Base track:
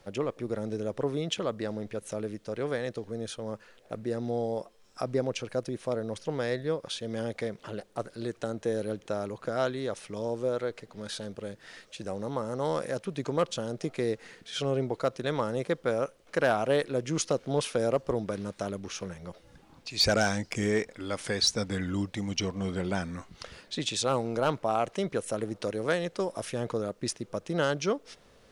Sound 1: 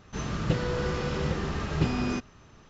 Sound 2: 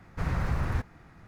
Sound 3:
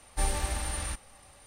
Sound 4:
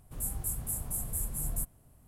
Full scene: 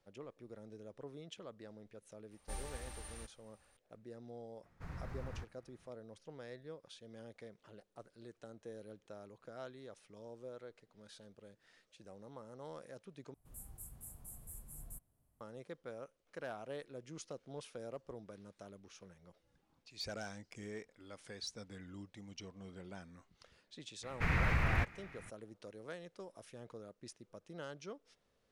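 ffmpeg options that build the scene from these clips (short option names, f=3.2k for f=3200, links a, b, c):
-filter_complex "[2:a]asplit=2[a][b];[0:a]volume=-19.5dB[c];[b]equalizer=f=2.3k:t=o:w=1:g=14[d];[c]asplit=2[e][f];[e]atrim=end=13.344[g];[4:a]atrim=end=2.07,asetpts=PTS-STARTPTS,volume=-17dB[h];[f]atrim=start=15.406[i];[3:a]atrim=end=1.46,asetpts=PTS-STARTPTS,volume=-16dB,afade=t=in:d=0.004:c=hsin,afade=t=out:st=1.456:d=0.004:c=hsin,adelay=2310[j];[a]atrim=end=1.27,asetpts=PTS-STARTPTS,volume=-17dB,afade=t=in:d=0.004:c=hsin,afade=t=out:st=1.266:d=0.004:c=hsin,adelay=4630[k];[d]atrim=end=1.27,asetpts=PTS-STARTPTS,volume=-4.5dB,afade=t=in:d=0.004:c=hsin,afade=t=out:st=1.266:d=0.004:c=hsin,adelay=24030[l];[g][h]acrossfade=d=0.004:c1=hsin:c2=hsin[m];[m][i]acrossfade=d=0.004:c1=hsin:c2=hsin[n];[n][j][k][l]amix=inputs=4:normalize=0"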